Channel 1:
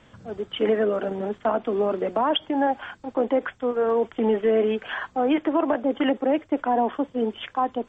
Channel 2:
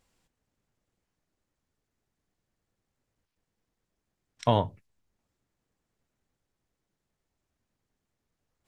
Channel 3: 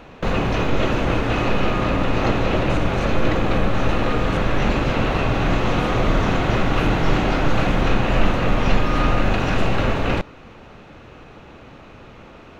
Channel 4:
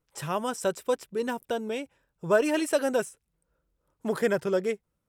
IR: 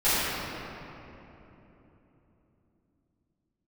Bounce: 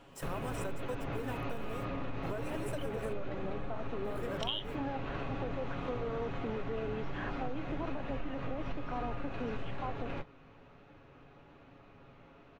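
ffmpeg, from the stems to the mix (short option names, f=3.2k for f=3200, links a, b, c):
-filter_complex "[0:a]adelay=2250,volume=-6.5dB[a];[1:a]highpass=f=3k:t=q:w=11,volume=-1dB[b];[2:a]aemphasis=mode=reproduction:type=50fm,aecho=1:1:7.2:0.49,flanger=delay=9.4:depth=9.9:regen=-38:speed=1.1:shape=sinusoidal,volume=-12dB[c];[3:a]acrusher=bits=8:dc=4:mix=0:aa=0.000001,volume=-7dB[d];[a][d]amix=inputs=2:normalize=0,equalizer=f=4.1k:t=o:w=1.7:g=-5.5,alimiter=level_in=1dB:limit=-24dB:level=0:latency=1:release=342,volume=-1dB,volume=0dB[e];[b][c][e]amix=inputs=3:normalize=0,acompressor=threshold=-33dB:ratio=6"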